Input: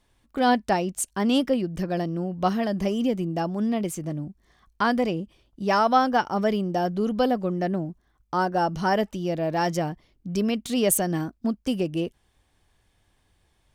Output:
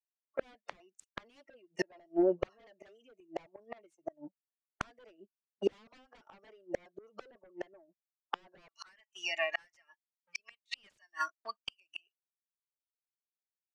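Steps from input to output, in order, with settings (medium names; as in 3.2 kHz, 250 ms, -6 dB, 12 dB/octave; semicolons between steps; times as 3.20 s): spectral noise reduction 25 dB; level-controlled noise filter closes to 1.8 kHz, open at -24 dBFS; gate -32 dBFS, range -39 dB; high-pass 510 Hz 24 dB/octave, from 8.68 s 1.4 kHz; compression 6:1, threshold -23 dBFS, peak gain reduction 8.5 dB; sine folder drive 19 dB, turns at -11.5 dBFS; rotary cabinet horn 5.5 Hz; inverted gate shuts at -15 dBFS, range -39 dB; tape spacing loss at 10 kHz 22 dB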